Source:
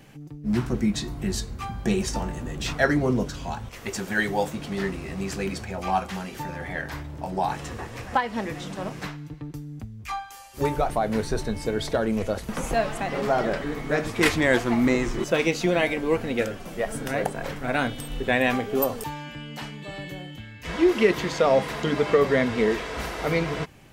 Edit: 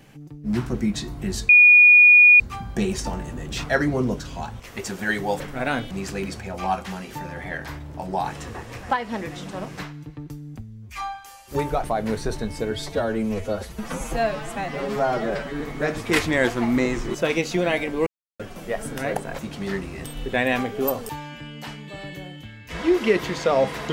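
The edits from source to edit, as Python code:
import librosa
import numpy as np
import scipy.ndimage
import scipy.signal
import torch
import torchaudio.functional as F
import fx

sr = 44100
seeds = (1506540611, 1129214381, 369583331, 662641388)

y = fx.edit(x, sr, fx.insert_tone(at_s=1.49, length_s=0.91, hz=2450.0, db=-8.0),
    fx.swap(start_s=4.49, length_s=0.66, other_s=17.48, other_length_s=0.51),
    fx.stretch_span(start_s=9.85, length_s=0.36, factor=1.5),
    fx.stretch_span(start_s=11.77, length_s=1.93, factor=1.5),
    fx.silence(start_s=16.16, length_s=0.33), tone=tone)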